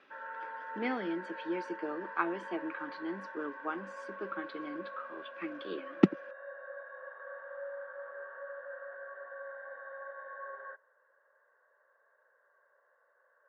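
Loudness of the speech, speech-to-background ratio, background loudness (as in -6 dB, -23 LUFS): -37.0 LUFS, 8.0 dB, -45.0 LUFS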